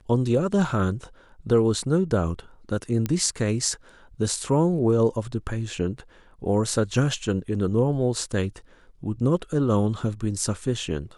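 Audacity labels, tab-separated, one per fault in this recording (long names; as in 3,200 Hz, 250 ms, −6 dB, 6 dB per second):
3.060000	3.060000	click −13 dBFS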